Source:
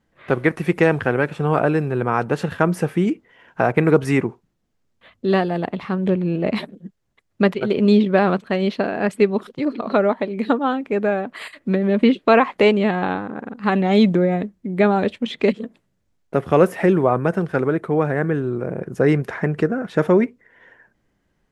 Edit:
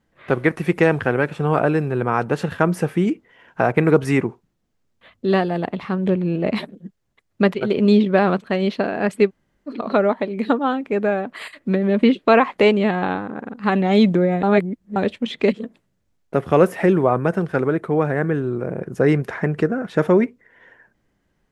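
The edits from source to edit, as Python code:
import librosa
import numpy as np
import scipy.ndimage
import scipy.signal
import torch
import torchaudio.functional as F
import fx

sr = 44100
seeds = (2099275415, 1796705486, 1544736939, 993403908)

y = fx.edit(x, sr, fx.room_tone_fill(start_s=9.28, length_s=0.41, crossfade_s=0.06),
    fx.reverse_span(start_s=14.43, length_s=0.53), tone=tone)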